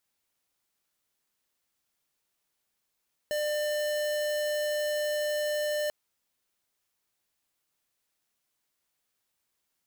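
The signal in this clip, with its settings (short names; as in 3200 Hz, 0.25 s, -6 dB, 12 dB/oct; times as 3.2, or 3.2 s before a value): tone square 598 Hz -29.5 dBFS 2.59 s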